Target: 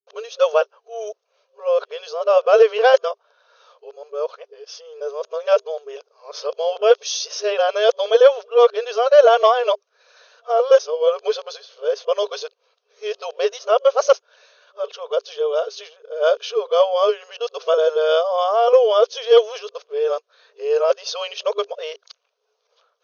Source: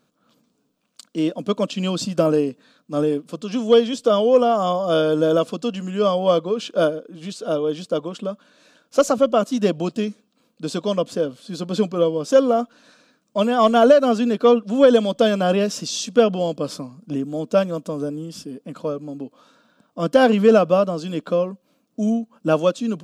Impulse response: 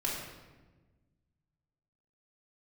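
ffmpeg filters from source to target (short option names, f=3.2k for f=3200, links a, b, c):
-af "areverse,afftfilt=real='re*between(b*sr/4096,400,6600)':imag='im*between(b*sr/4096,400,6600)':win_size=4096:overlap=0.75,volume=2dB"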